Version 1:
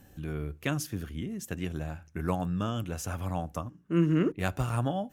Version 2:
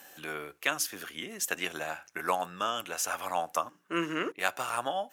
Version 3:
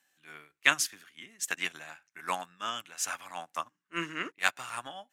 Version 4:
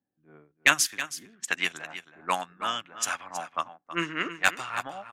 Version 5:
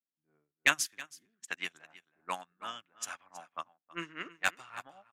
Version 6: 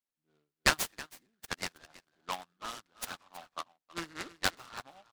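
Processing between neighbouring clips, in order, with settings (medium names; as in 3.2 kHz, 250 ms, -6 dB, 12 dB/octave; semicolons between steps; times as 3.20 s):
high-pass 780 Hz 12 dB/octave; gain riding within 3 dB 0.5 s; trim +8.5 dB
graphic EQ 125/250/500/1000/2000/4000/8000 Hz +9/+5/-3/+4/+10/+7/+9 dB; transient shaper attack -4 dB, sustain +4 dB; upward expansion 2.5:1, over -37 dBFS
hard clipper -12.5 dBFS, distortion -15 dB; level-controlled noise filter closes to 300 Hz, open at -28.5 dBFS; delay 322 ms -12.5 dB; trim +5.5 dB
upward expansion 1.5:1, over -48 dBFS; trim -5 dB
delay time shaken by noise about 2.1 kHz, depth 0.071 ms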